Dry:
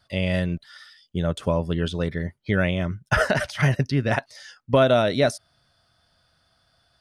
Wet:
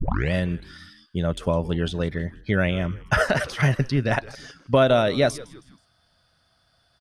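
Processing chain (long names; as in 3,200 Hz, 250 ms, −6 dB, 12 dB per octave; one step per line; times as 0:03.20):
turntable start at the beginning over 0.32 s
echo with shifted repeats 160 ms, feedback 44%, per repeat −130 Hz, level −19 dB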